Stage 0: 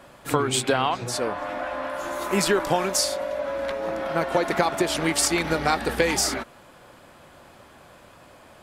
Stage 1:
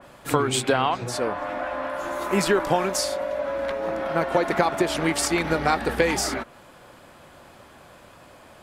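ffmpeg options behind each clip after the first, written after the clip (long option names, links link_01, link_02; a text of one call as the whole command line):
ffmpeg -i in.wav -af "adynamicequalizer=threshold=0.01:dfrequency=2900:dqfactor=0.7:tfrequency=2900:tqfactor=0.7:attack=5:release=100:ratio=0.375:range=2.5:mode=cutabove:tftype=highshelf,volume=1dB" out.wav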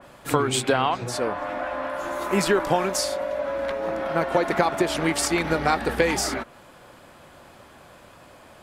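ffmpeg -i in.wav -af anull out.wav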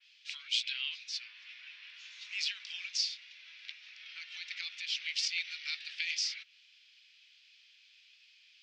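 ffmpeg -i in.wav -af "asuperpass=centerf=3700:order=8:qfactor=1.1,volume=-2dB" out.wav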